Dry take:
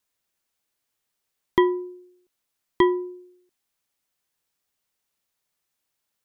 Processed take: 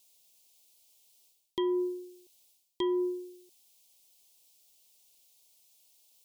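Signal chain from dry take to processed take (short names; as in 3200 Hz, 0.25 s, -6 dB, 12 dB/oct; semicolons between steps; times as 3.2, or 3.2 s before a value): bell 540 Hz +4.5 dB 2 oct; reverse; compressor 12:1, threshold -29 dBFS, peak gain reduction 19.5 dB; reverse; Butterworth band-stop 1500 Hz, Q 0.78; tilt shelf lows -8 dB, about 1200 Hz; gain +8 dB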